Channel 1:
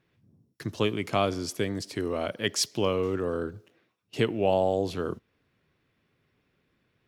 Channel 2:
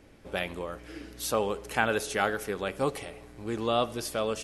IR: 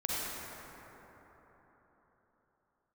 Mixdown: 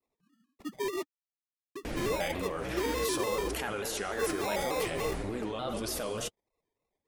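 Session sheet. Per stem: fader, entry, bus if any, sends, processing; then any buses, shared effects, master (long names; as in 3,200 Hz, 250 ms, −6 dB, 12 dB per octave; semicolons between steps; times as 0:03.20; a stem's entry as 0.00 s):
+0.5 dB, 0.00 s, muted 0:01.03–0:01.75, no send, three sine waves on the formant tracks; decimation without filtering 30×; brickwall limiter −25 dBFS, peak gain reduction 10.5 dB
−11.0 dB, 1.85 s, send −12.5 dB, envelope flattener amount 100%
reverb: on, RT60 4.1 s, pre-delay 38 ms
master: flanger 1.7 Hz, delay 2.5 ms, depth 5.5 ms, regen −37%; pitch modulation by a square or saw wave square 3.4 Hz, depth 100 cents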